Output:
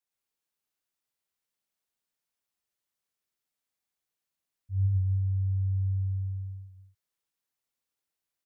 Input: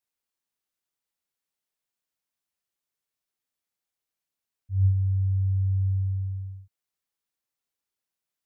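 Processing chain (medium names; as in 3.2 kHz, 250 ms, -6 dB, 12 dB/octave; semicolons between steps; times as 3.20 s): loudspeakers at several distances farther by 38 m 0 dB, 93 m -9 dB; trim -3.5 dB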